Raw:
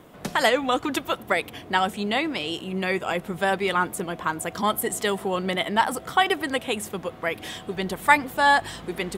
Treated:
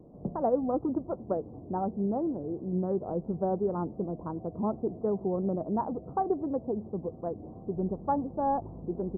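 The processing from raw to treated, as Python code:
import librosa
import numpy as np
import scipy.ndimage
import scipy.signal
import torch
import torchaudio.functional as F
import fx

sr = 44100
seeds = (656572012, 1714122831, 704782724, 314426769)

y = fx.wiener(x, sr, points=25)
y = scipy.ndimage.gaussian_filter1d(y, 12.0, mode='constant')
y = fx.vibrato(y, sr, rate_hz=2.8, depth_cents=59.0)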